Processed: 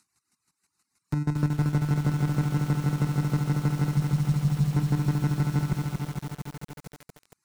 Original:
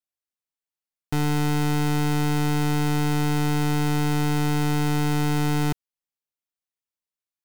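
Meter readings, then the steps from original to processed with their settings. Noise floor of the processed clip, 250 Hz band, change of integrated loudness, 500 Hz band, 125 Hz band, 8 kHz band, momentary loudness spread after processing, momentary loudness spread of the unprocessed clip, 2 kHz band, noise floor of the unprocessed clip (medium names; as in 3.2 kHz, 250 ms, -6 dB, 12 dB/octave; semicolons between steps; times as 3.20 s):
-82 dBFS, -4.0 dB, -2.5 dB, -9.0 dB, +0.5 dB, -9.5 dB, 11 LU, 2 LU, -9.5 dB, under -85 dBFS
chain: cabinet simulation 140–9900 Hz, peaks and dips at 520 Hz -10 dB, 1.7 kHz -7 dB, 3.9 kHz +9 dB; waveshaping leveller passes 2; bass shelf 190 Hz +10 dB; static phaser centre 1.4 kHz, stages 4; square tremolo 6.3 Hz, depth 60%, duty 20%; gate with hold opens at -15 dBFS; Chebyshev shaper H 2 -17 dB, 4 -25 dB, 5 -25 dB, 8 -39 dB, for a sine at -11 dBFS; upward compressor, threshold -32 dBFS; reverb removal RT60 0.96 s; spectral selection erased 3.89–4.74 s, 220–3500 Hz; peak limiter -16 dBFS, peak gain reduction 5.5 dB; bit-crushed delay 229 ms, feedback 80%, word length 7-bit, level -4 dB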